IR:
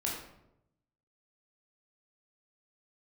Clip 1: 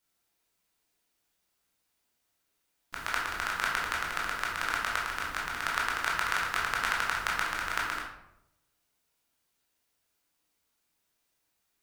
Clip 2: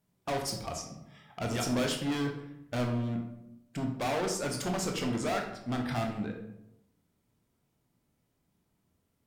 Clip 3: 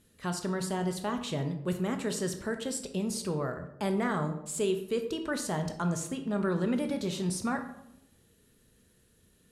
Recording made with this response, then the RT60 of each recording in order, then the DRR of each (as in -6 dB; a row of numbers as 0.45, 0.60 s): 1; 0.85, 0.85, 0.85 s; -4.0, 2.0, 6.0 dB